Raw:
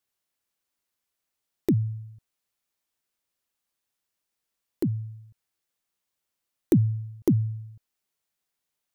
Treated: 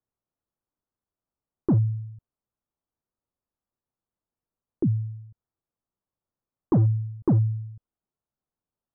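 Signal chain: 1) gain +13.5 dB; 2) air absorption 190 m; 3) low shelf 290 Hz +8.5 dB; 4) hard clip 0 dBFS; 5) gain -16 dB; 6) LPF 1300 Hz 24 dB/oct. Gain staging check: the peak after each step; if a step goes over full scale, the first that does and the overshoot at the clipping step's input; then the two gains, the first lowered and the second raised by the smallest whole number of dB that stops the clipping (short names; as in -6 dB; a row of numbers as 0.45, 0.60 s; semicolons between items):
+4.0, +2.5, +7.0, 0.0, -16.0, -15.0 dBFS; step 1, 7.0 dB; step 1 +6.5 dB, step 5 -9 dB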